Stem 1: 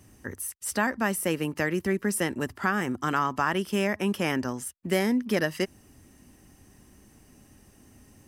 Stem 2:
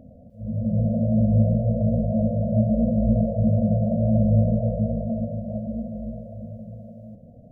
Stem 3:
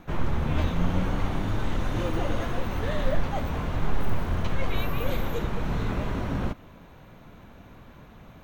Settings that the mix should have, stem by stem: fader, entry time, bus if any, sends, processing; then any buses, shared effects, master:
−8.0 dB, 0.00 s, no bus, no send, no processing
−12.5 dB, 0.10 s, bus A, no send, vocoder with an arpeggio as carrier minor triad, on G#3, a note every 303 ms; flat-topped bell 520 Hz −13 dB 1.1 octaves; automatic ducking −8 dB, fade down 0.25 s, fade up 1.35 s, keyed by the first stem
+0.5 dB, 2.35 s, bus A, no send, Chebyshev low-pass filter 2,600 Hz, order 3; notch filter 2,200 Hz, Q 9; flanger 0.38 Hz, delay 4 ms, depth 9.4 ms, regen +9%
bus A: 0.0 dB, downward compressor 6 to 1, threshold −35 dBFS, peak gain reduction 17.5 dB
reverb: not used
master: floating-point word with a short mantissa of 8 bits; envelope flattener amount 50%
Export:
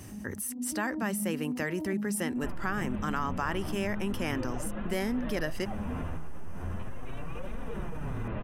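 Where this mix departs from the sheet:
stem 2 −12.5 dB → −1.5 dB
master: missing floating-point word with a short mantissa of 8 bits

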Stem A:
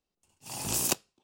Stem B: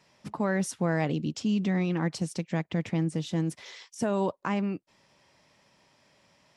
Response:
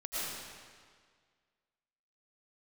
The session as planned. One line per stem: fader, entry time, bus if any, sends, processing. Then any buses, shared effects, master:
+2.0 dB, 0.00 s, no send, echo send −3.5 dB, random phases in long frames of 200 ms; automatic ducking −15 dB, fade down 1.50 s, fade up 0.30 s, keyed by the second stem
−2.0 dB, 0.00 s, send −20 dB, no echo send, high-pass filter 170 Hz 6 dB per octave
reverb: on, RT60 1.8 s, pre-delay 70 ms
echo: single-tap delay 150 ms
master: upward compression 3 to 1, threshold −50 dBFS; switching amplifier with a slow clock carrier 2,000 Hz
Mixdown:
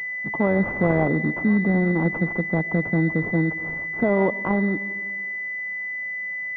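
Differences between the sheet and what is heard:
stem A: missing random phases in long frames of 200 ms
stem B −2.0 dB → +8.5 dB

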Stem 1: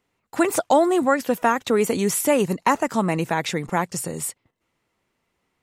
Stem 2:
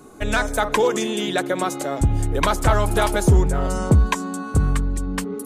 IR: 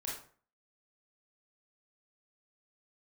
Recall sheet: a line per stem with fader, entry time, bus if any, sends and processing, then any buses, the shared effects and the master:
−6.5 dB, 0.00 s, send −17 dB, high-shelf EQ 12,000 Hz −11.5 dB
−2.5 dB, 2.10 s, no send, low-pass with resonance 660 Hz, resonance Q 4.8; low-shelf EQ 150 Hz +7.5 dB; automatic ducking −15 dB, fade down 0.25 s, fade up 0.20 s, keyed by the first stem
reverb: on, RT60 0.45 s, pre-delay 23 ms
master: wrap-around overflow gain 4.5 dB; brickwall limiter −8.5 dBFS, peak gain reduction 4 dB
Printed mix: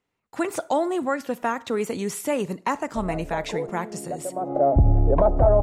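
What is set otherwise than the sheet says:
stem 2: entry 2.10 s → 2.75 s
master: missing wrap-around overflow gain 4.5 dB

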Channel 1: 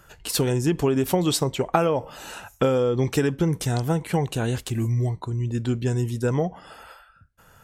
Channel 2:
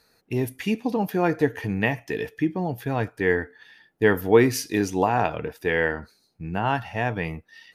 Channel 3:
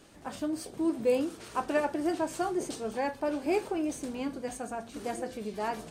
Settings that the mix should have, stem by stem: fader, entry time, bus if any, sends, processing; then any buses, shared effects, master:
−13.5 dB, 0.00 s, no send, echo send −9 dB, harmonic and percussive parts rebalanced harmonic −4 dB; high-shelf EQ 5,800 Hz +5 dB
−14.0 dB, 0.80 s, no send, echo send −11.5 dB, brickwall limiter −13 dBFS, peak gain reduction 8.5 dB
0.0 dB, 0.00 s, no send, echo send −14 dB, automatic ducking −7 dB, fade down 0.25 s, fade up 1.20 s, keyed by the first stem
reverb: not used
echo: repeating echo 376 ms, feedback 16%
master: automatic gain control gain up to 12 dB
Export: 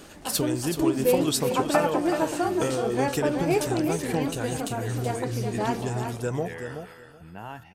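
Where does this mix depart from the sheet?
stem 1 −13.5 dB → −4.0 dB
stem 3 0.0 dB → +11.0 dB
master: missing automatic gain control gain up to 12 dB

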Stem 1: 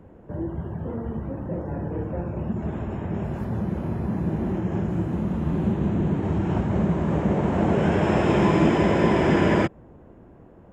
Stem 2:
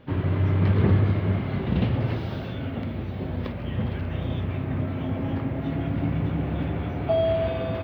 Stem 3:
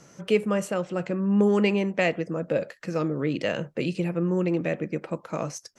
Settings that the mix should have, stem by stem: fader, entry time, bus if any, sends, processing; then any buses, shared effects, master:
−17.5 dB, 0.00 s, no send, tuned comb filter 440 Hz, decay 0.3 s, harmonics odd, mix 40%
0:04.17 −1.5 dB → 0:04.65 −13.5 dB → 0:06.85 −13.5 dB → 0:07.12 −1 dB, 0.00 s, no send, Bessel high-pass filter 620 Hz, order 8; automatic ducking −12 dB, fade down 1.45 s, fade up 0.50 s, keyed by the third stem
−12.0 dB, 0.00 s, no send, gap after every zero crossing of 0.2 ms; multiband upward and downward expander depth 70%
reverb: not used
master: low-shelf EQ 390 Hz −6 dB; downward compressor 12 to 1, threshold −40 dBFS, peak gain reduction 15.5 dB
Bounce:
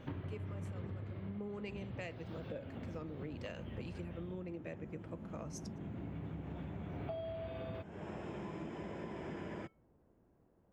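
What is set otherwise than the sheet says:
stem 2: missing Bessel high-pass filter 620 Hz, order 8
stem 3: missing gap after every zero crossing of 0.2 ms
master: missing low-shelf EQ 390 Hz −6 dB

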